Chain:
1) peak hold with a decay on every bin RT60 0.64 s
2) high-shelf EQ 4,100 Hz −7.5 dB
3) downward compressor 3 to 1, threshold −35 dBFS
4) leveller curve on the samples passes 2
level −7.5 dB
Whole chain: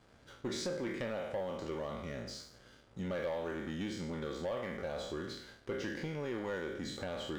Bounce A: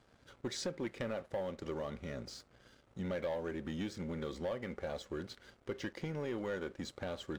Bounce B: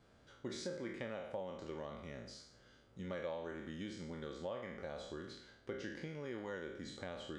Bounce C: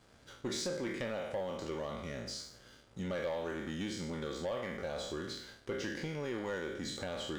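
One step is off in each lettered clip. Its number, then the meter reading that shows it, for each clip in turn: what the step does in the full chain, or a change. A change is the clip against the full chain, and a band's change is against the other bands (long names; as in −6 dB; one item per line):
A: 1, 2 kHz band −1.5 dB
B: 4, change in crest factor +6.0 dB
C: 2, 8 kHz band +4.5 dB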